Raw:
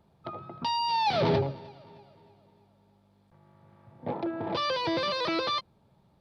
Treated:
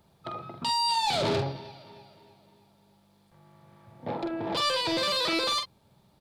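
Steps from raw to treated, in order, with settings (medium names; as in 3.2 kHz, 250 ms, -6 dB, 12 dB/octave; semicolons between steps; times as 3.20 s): treble shelf 2.8 kHz +11.5 dB; saturation -22.5 dBFS, distortion -14 dB; doubling 46 ms -6 dB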